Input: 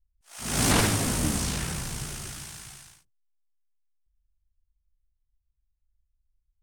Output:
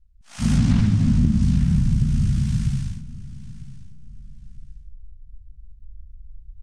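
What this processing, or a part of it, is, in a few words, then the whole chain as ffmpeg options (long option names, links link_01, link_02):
jukebox: -filter_complex "[0:a]asubboost=boost=10.5:cutoff=240,asettb=1/sr,asplit=3[link_01][link_02][link_03];[link_01]atrim=end=0.574[link_04];[link_02]atrim=start=0.57:end=1.42,asetpts=PTS-STARTPTS,afade=type=in:duration=0.004:curve=qsin,afade=type=out:start_time=0.846:duration=0.004:curve=qsin,lowpass=7200[link_05];[link_03]atrim=start=1.416[link_06];[link_04][link_05]acrossfade=duration=0.004:curve1=hsin:curve2=qsin[link_07];[link_07][link_06]acrossfade=duration=0.004:curve1=qsin:curve2=hsin,lowpass=6500,lowshelf=frequency=290:width_type=q:width=3:gain=8.5,acompressor=threshold=-22dB:ratio=5,aecho=1:1:948|1896:0.133|0.036,volume=5.5dB"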